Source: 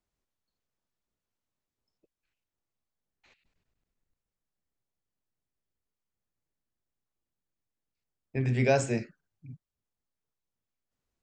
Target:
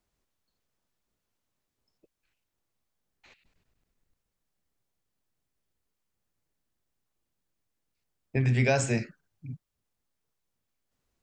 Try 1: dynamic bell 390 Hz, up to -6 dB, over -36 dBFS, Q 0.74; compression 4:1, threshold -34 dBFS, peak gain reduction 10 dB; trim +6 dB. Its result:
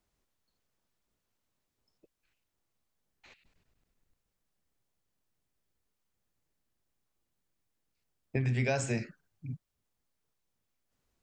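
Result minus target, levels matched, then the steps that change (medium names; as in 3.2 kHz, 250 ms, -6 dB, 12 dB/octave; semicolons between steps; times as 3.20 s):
compression: peak gain reduction +6 dB
change: compression 4:1, threshold -26 dBFS, peak gain reduction 4 dB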